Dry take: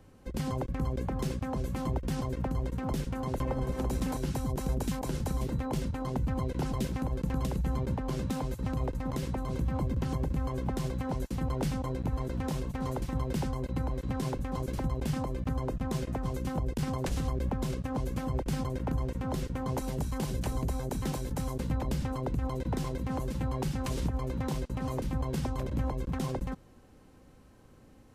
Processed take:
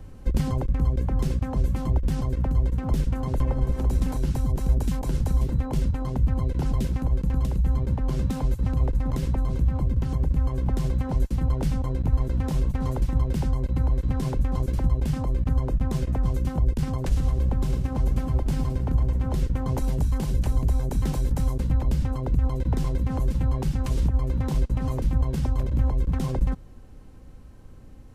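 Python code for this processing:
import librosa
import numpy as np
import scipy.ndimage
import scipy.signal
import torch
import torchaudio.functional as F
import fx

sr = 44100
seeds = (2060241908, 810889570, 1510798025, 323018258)

y = fx.echo_feedback(x, sr, ms=112, feedback_pct=44, wet_db=-9.0, at=(17.21, 19.35), fade=0.02)
y = fx.low_shelf(y, sr, hz=68.0, db=10.0)
y = fx.rider(y, sr, range_db=10, speed_s=0.5)
y = fx.low_shelf(y, sr, hz=150.0, db=7.0)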